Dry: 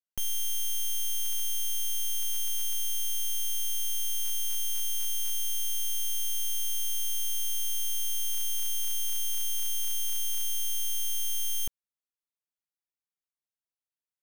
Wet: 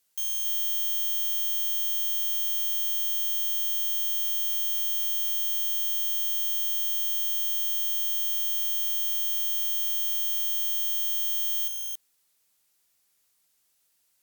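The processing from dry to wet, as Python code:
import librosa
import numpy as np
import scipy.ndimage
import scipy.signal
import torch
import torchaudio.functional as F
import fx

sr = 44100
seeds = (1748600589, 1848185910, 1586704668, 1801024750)

p1 = fx.fold_sine(x, sr, drive_db=12, ceiling_db=-27.0)
p2 = fx.peak_eq(p1, sr, hz=14000.0, db=9.5, octaves=2.4)
y = p2 + fx.echo_single(p2, sr, ms=277, db=-4.0, dry=0)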